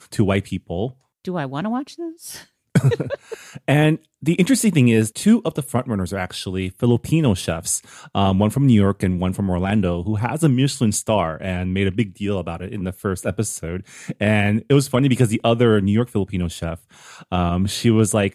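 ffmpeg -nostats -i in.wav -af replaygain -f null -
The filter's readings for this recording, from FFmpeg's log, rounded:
track_gain = -0.2 dB
track_peak = 0.506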